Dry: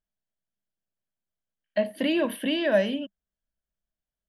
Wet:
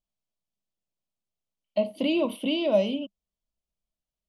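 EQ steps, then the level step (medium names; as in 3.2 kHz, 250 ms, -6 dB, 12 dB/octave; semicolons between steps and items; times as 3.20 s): Butterworth band-stop 1.7 kHz, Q 1.5; low-pass 8.3 kHz 12 dB/octave; 0.0 dB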